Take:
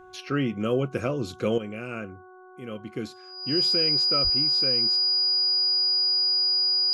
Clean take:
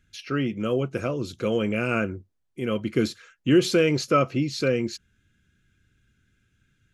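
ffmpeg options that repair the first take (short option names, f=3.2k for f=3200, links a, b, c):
-filter_complex "[0:a]bandreject=f=369.6:t=h:w=4,bandreject=f=739.2:t=h:w=4,bandreject=f=1.1088k:t=h:w=4,bandreject=f=1.4784k:t=h:w=4,bandreject=f=4.9k:w=30,asplit=3[a][b][c];[a]afade=t=out:st=4.23:d=0.02[d];[b]highpass=f=140:w=0.5412,highpass=f=140:w=1.3066,afade=t=in:st=4.23:d=0.02,afade=t=out:st=4.35:d=0.02[e];[c]afade=t=in:st=4.35:d=0.02[f];[d][e][f]amix=inputs=3:normalize=0,asetnsamples=n=441:p=0,asendcmd='1.58 volume volume 10dB',volume=0dB"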